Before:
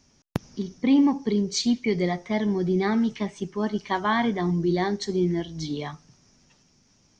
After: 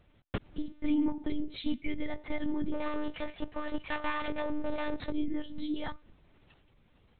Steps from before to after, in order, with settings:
0:02.73–0:05.11: lower of the sound and its delayed copy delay 1.7 ms
downward compressor 2.5 to 1, threshold −30 dBFS, peak gain reduction 10 dB
one-pitch LPC vocoder at 8 kHz 300 Hz

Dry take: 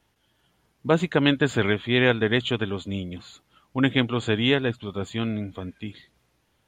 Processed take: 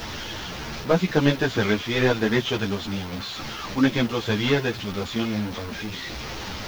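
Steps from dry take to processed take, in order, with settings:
linear delta modulator 32 kbit/s, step −28 dBFS
background noise violet −53 dBFS
string-ensemble chorus
level +4 dB

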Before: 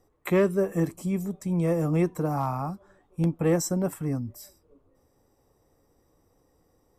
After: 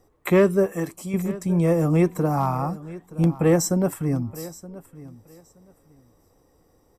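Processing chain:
0:00.66–0:01.14: low-shelf EQ 420 Hz −10.5 dB
repeating echo 922 ms, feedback 20%, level −18 dB
level +5 dB

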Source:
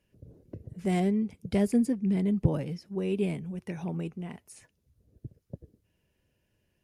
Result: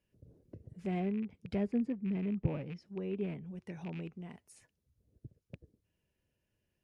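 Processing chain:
loose part that buzzes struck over −32 dBFS, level −32 dBFS
treble cut that deepens with the level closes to 2,300 Hz, closed at −26.5 dBFS
level −8 dB

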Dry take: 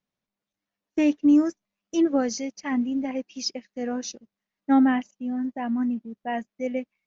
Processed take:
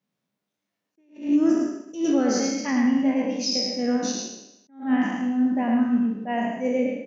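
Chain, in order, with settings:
peak hold with a decay on every bin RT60 0.88 s
high-pass filter 130 Hz 24 dB per octave
low-shelf EQ 310 Hz +7 dB
brickwall limiter −15.5 dBFS, peak gain reduction 9.5 dB
on a send: single-tap delay 107 ms −3.5 dB
on the sum: level that may rise only so fast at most 170 dB per second

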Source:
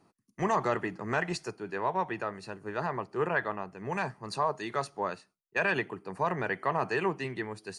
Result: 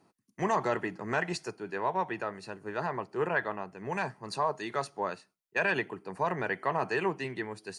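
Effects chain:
low-shelf EQ 81 Hz −8.5 dB
notch filter 1,200 Hz, Q 16

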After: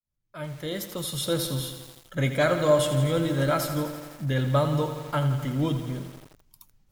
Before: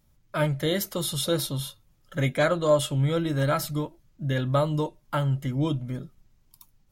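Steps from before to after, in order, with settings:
fade in at the beginning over 1.53 s
feedback echo at a low word length 84 ms, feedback 80%, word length 7 bits, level −9.5 dB

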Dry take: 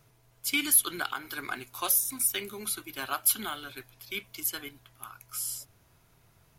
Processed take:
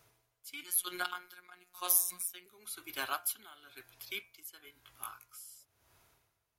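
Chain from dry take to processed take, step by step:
high-pass filter 50 Hz
parametric band 160 Hz −11.5 dB 1.6 octaves
hum removal 176.2 Hz, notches 15
0:00.63–0:02.46: phases set to zero 179 Hz
0:04.62–0:05.34: double-tracking delay 19 ms −3 dB
tremolo with a sine in dB 1 Hz, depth 18 dB

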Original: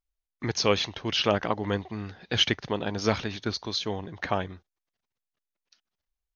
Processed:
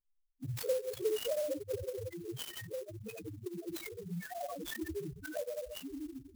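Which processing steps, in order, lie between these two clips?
parametric band 180 Hz −5.5 dB 2.3 octaves
spring reverb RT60 1.1 s, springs 58 ms, chirp 60 ms, DRR 0 dB
delay with pitch and tempo change per echo 224 ms, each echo −3 semitones, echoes 3, each echo −6 dB
downward compressor 16 to 1, threshold −26 dBFS, peak gain reduction 10 dB
0:02.06–0:04.40: tuned comb filter 170 Hz, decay 0.31 s, harmonics all, mix 60%
echo with a time of its own for lows and highs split 330 Hz, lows 607 ms, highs 127 ms, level −15 dB
spectral peaks only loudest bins 1
dynamic equaliser 3,700 Hz, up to −5 dB, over −52 dBFS, Q 3.4
flanger swept by the level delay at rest 10.5 ms, full sweep at −30.5 dBFS
converter with an unsteady clock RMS 0.052 ms
level +10.5 dB

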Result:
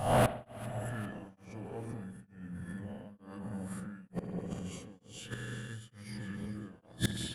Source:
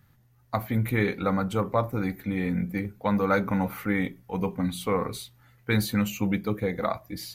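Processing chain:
peak hold with a rise ahead of every peak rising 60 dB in 0.92 s
camcorder AGC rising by 67 dB per second
dynamic equaliser 1,100 Hz, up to −8 dB, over −38 dBFS, Q 0.88
formants moved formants −5 semitones
gate with flip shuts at −20 dBFS, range −34 dB
soft clipping −36.5 dBFS, distortion −5 dB
delay that swaps between a low-pass and a high-pass 199 ms, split 980 Hz, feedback 71%, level −13 dB
spring reverb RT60 2.3 s, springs 53 ms, chirp 20 ms, DRR 8.5 dB
tremolo along a rectified sine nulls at 1.1 Hz
level +17.5 dB

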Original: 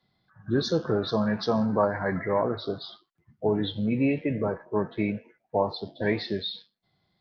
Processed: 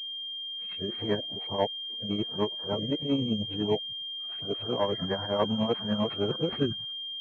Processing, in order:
played backwards from end to start
shaped tremolo triangle 10 Hz, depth 70%
switching amplifier with a slow clock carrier 3,200 Hz

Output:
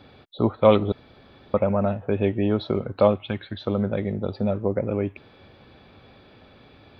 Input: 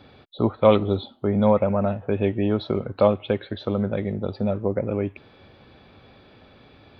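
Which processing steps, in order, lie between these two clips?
0:00.92–0:01.54: fill with room tone
0:03.18–0:03.66: parametric band 470 Hz −13.5 dB 0.79 octaves

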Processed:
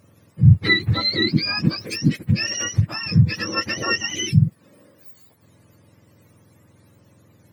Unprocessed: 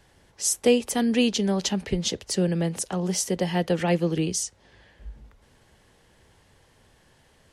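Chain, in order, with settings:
frequency axis turned over on the octave scale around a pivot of 980 Hz
level +3.5 dB
Opus 96 kbit/s 48,000 Hz

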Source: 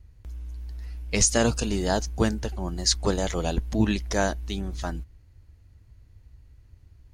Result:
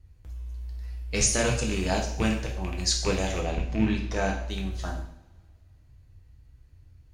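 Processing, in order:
loose part that buzzes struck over −24 dBFS, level −20 dBFS
0:03.39–0:04.49: low-pass filter 1,700 Hz → 3,800 Hz 6 dB per octave
coupled-rooms reverb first 0.61 s, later 2.2 s, from −24 dB, DRR −0.5 dB
level −5 dB

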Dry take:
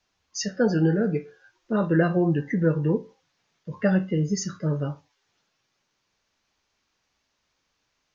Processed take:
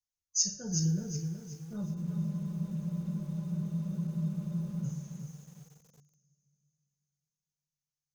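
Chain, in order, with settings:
noise reduction from a noise print of the clip's start 21 dB
drawn EQ curve 130 Hz 0 dB, 290 Hz −24 dB, 2,100 Hz −26 dB, 6,400 Hz +7 dB
coupled-rooms reverb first 0.42 s, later 3.5 s, from −22 dB, DRR 3 dB
frozen spectrum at 0:01.87, 2.97 s
feedback echo at a low word length 370 ms, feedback 35%, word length 9 bits, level −7 dB
level −1.5 dB

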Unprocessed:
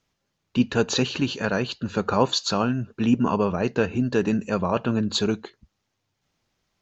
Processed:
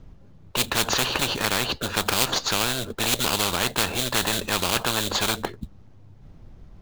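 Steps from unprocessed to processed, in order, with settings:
spectral tilt −4.5 dB per octave
in parallel at −9 dB: sample-rate reduction 3,800 Hz, jitter 20%
on the sum: every bin compressed towards the loudest bin 10 to 1
level −5.5 dB

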